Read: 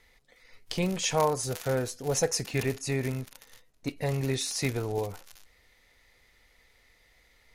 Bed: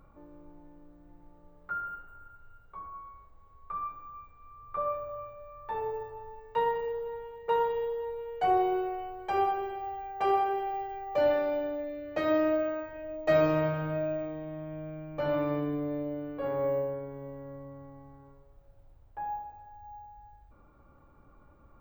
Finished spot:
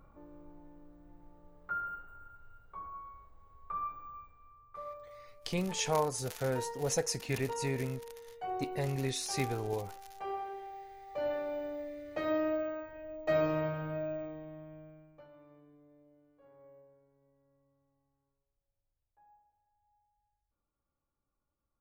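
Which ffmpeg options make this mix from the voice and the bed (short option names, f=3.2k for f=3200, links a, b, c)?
-filter_complex "[0:a]adelay=4750,volume=-5dB[a];[1:a]volume=5.5dB,afade=t=out:st=4.11:d=0.59:silence=0.281838,afade=t=in:st=10.97:d=0.82:silence=0.446684,afade=t=out:st=14.25:d=1.03:silence=0.0668344[b];[a][b]amix=inputs=2:normalize=0"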